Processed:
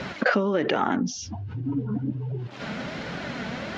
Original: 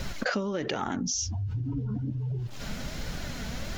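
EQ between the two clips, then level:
band-pass filter 190–2,800 Hz
+8.0 dB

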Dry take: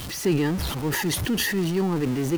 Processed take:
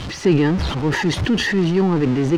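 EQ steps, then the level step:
high-frequency loss of the air 130 metres
+7.0 dB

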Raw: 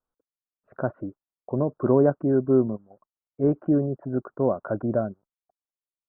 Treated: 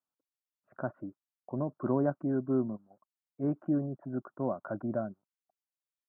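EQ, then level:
high-pass filter 130 Hz 12 dB per octave
parametric band 450 Hz −10.5 dB 0.45 octaves
−6.0 dB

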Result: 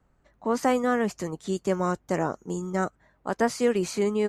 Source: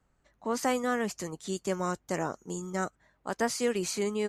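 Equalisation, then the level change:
high-shelf EQ 2,300 Hz −9 dB
+6.0 dB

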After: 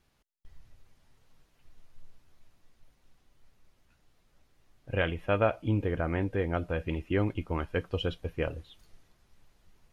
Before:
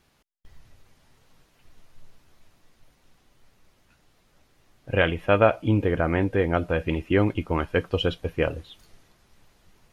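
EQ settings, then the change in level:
low-shelf EQ 78 Hz +7.5 dB
−8.0 dB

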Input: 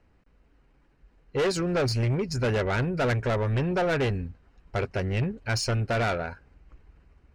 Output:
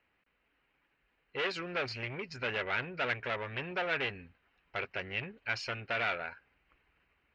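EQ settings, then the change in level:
transistor ladder low-pass 3,300 Hz, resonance 35%
spectral tilt +4 dB per octave
0.0 dB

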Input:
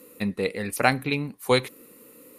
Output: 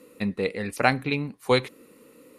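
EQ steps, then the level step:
high-frequency loss of the air 51 metres
0.0 dB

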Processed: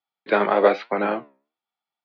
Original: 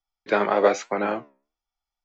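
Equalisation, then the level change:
high-pass filter 140 Hz 24 dB per octave
Butterworth low-pass 4,400 Hz 48 dB per octave
+2.0 dB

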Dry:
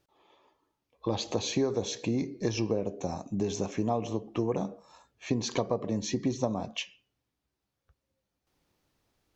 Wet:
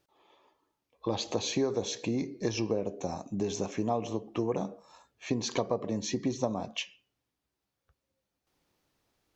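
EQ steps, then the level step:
low-shelf EQ 170 Hz −5 dB
0.0 dB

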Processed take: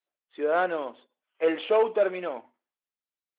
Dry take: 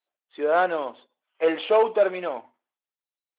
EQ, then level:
high-frequency loss of the air 180 metres
parametric band 120 Hz −5 dB 0.74 octaves
parametric band 840 Hz −4.5 dB 1.3 octaves
0.0 dB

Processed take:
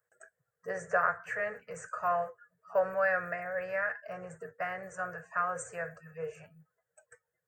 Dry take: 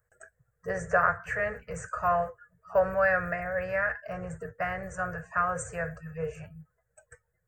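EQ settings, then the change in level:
high-pass filter 230 Hz 12 dB per octave
−4.0 dB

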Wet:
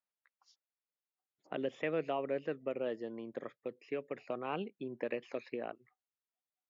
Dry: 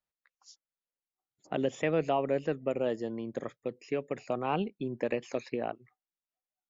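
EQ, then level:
high-pass filter 430 Hz 6 dB per octave
dynamic equaliser 820 Hz, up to −6 dB, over −47 dBFS, Q 1.9
high-frequency loss of the air 220 metres
−1.5 dB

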